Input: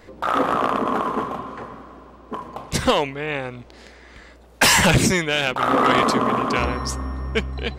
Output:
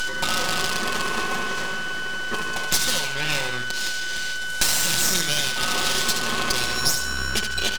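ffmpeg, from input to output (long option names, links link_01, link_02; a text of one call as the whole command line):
ffmpeg -i in.wav -filter_complex "[0:a]aeval=exprs='0.2*(abs(mod(val(0)/0.2+3,4)-2)-1)':channel_layout=same,aexciter=amount=7.2:drive=5.9:freq=2900,aeval=exprs='(tanh(1.41*val(0)+0.3)-tanh(0.3))/1.41':channel_layout=same,lowpass=5900,acompressor=threshold=-27dB:ratio=5,aemphasis=mode=production:type=cd,acompressor=mode=upward:threshold=-33dB:ratio=2.5,aeval=exprs='val(0)+0.0501*sin(2*PI*1500*n/s)':channel_layout=same,aecho=1:1:5.5:0.78,asplit=2[link_01][link_02];[link_02]aecho=0:1:73|146|219|292|365:0.447|0.183|0.0751|0.0308|0.0126[link_03];[link_01][link_03]amix=inputs=2:normalize=0,aeval=exprs='max(val(0),0)':channel_layout=same,volume=5dB" out.wav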